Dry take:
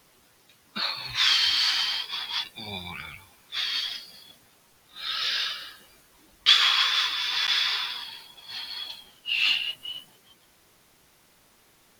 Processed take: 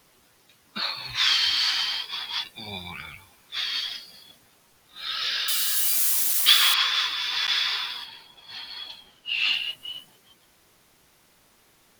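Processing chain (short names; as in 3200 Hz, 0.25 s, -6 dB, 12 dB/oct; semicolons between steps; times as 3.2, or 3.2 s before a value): 5.48–6.74 switching spikes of -17 dBFS; 8.04–9.52 high shelf 4300 Hz -> 7800 Hz -7.5 dB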